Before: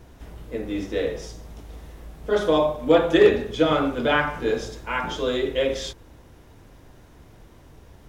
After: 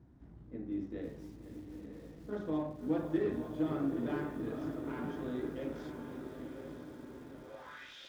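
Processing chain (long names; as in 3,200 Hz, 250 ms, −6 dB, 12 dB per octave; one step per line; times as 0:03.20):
drawn EQ curve 130 Hz 0 dB, 450 Hz −21 dB, 760 Hz −11 dB, 1,800 Hz −5 dB, 2,800 Hz −9 dB, 4,400 Hz −3 dB
on a send: feedback delay with all-pass diffusion 954 ms, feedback 57%, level −7.5 dB
on the sum: harmonic generator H 5 −14 dB, 8 −19 dB, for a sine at −15 dBFS
band-pass filter sweep 310 Hz → 3,500 Hz, 0:07.41–0:07.95
feedback echo at a low word length 502 ms, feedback 55%, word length 9 bits, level −13 dB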